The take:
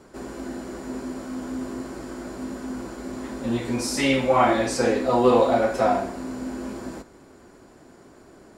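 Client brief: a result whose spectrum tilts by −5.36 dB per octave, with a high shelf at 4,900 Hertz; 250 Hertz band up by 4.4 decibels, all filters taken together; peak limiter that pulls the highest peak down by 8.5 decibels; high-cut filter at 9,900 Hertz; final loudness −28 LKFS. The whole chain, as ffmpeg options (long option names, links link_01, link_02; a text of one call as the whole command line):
ffmpeg -i in.wav -af "lowpass=9900,equalizer=frequency=250:width_type=o:gain=5,highshelf=frequency=4900:gain=-8,volume=-2.5dB,alimiter=limit=-16dB:level=0:latency=1" out.wav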